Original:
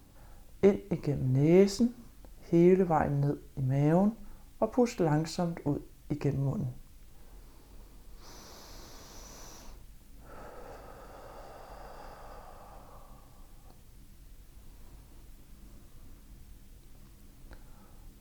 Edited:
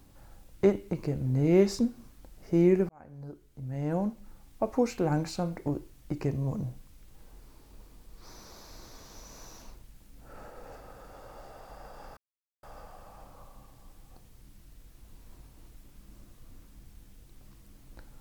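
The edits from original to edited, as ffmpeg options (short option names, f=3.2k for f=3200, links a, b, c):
-filter_complex "[0:a]asplit=3[a][b][c];[a]atrim=end=2.89,asetpts=PTS-STARTPTS,afade=t=out:st=2.886:d=0.004:c=hsin[d];[b]atrim=start=2.89:end=12.17,asetpts=PTS-STARTPTS,afade=t=in:d=1.79,afade=t=out:st=9.276:d=0.004:c=hsin,apad=pad_dur=0.46[e];[c]atrim=start=12.17,asetpts=PTS-STARTPTS,afade=t=in:d=0.004:c=hsin[f];[d][e][f]concat=n=3:v=0:a=1"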